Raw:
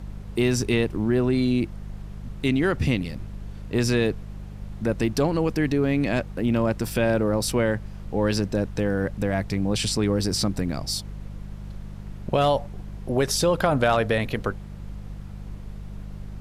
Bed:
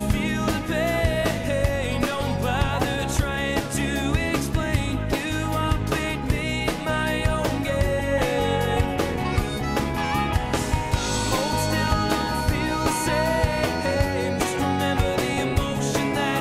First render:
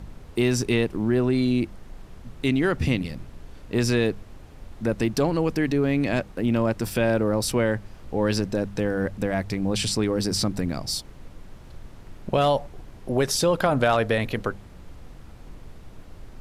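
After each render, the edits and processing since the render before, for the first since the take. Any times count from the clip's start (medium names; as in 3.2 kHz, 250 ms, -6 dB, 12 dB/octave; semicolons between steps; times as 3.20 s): de-hum 50 Hz, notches 4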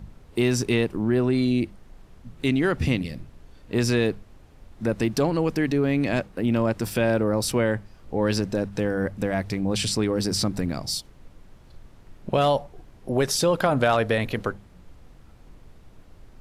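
noise print and reduce 6 dB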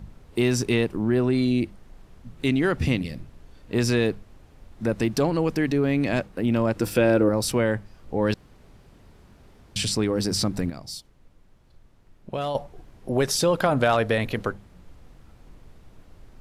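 6.75–7.29 s: small resonant body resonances 320/490/1400/2600 Hz, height 8 dB; 8.34–9.76 s: room tone; 10.70–12.55 s: gain -8 dB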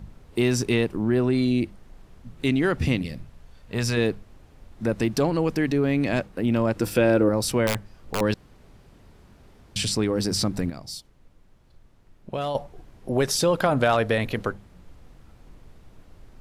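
3.15–3.96 s: peaking EQ 320 Hz -5.5 dB -> -11.5 dB 0.8 oct; 7.67–8.21 s: integer overflow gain 17 dB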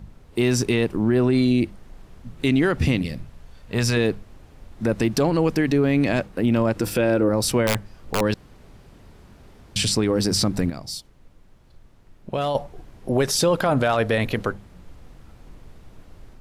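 level rider gain up to 4 dB; peak limiter -11 dBFS, peak gain reduction 6 dB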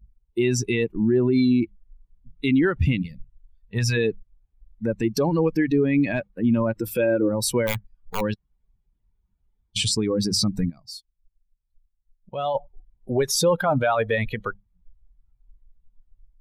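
expander on every frequency bin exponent 2; in parallel at -2 dB: peak limiter -22 dBFS, peak gain reduction 8.5 dB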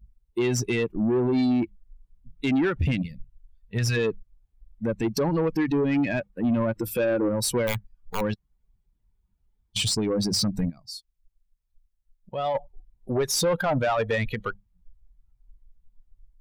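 saturation -18 dBFS, distortion -15 dB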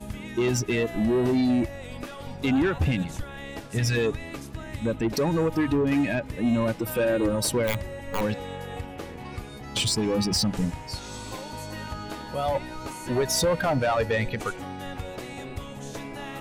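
add bed -13.5 dB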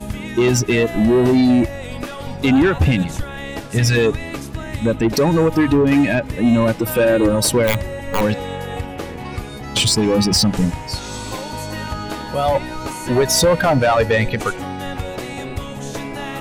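trim +9 dB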